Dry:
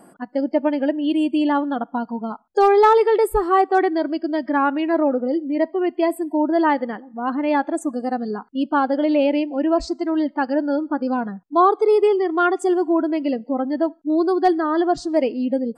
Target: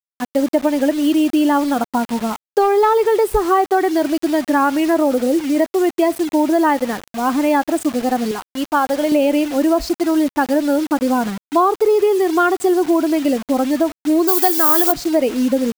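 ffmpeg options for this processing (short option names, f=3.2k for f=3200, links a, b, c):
-filter_complex "[0:a]asettb=1/sr,asplit=3[a][b][c];[a]atrim=end=8.314[d];[b]atrim=start=8.31:end=9.12,asetpts=PTS-STARTPTS,afade=t=in:d=0.004:c=qsin,afade=t=out:st=0.806:d=0.004:c=qsin,highpass=f=550:p=1[e];[c]atrim=start=9.116[f];[d][e]acrossfade=d=0.004:c1=hsin:c2=qsin[g];[g][f]acrossfade=d=0.004:c1=qsin:c2=hsin,acrusher=bits=5:mix=0:aa=0.000001,acompressor=threshold=-17dB:ratio=6,asplit=3[h][i][j];[h]afade=t=out:st=14.27:d=0.02[k];[i]aemphasis=mode=production:type=riaa,afade=t=in:st=14.27:d=0.02,afade=t=out:st=14.91:d=0.02[l];[j]afade=t=in:st=14.91:d=0.02[m];[k][l][m]amix=inputs=3:normalize=0,volume=6dB"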